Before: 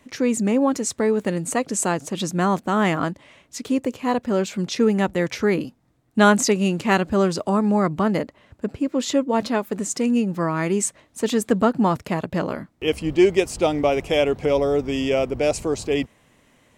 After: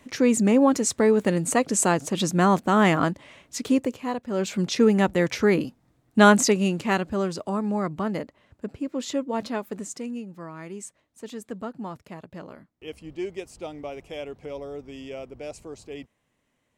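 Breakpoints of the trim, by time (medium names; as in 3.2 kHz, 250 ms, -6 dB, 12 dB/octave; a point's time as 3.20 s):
3.72 s +1 dB
4.25 s -10 dB
4.49 s 0 dB
6.35 s 0 dB
7.19 s -7 dB
9.74 s -7 dB
10.28 s -16 dB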